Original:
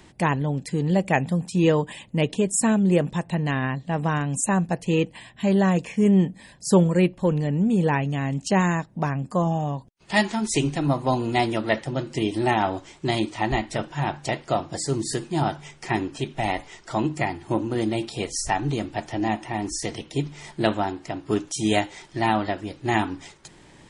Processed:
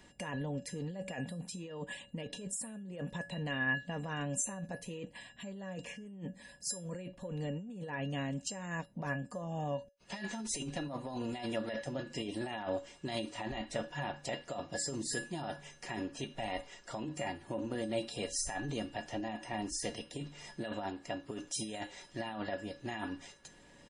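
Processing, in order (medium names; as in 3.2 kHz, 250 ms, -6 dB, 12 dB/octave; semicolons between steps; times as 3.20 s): comb 4.2 ms, depth 35%; compressor with a negative ratio -26 dBFS, ratio -1; feedback comb 560 Hz, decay 0.25 s, harmonics odd, mix 90%; trim +5 dB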